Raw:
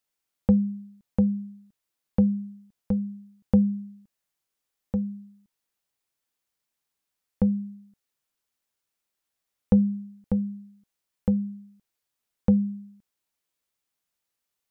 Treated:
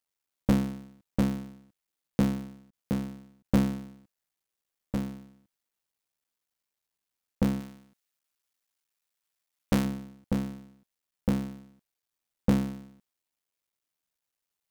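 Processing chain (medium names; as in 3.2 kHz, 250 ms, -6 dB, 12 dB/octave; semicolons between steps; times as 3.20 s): cycle switcher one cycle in 3, muted; 7.60–9.85 s: tilt shelf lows -3.5 dB, about 750 Hz; trim -2 dB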